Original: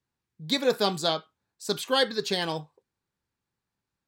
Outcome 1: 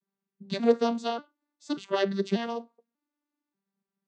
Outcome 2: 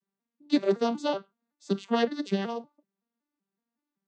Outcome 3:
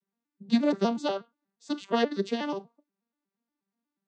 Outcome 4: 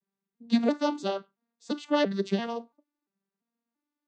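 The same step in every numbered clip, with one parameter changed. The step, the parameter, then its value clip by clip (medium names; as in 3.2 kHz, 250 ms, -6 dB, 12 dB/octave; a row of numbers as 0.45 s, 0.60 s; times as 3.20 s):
vocoder on a broken chord, a note every: 588 ms, 188 ms, 120 ms, 340 ms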